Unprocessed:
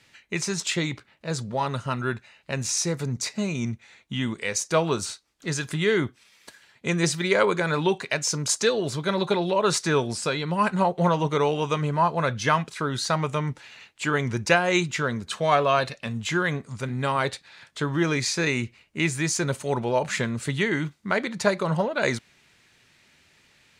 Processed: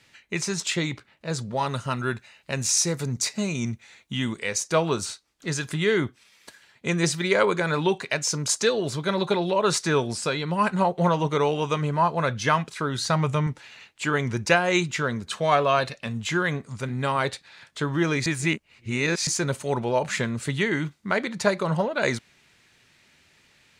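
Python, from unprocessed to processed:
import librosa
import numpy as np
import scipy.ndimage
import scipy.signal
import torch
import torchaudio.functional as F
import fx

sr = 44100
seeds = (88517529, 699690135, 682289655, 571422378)

y = fx.high_shelf(x, sr, hz=4900.0, db=6.5, at=(1.56, 4.39))
y = fx.peak_eq(y, sr, hz=100.0, db=14.5, octaves=0.77, at=(12.98, 13.47))
y = fx.edit(y, sr, fx.reverse_span(start_s=18.26, length_s=1.01), tone=tone)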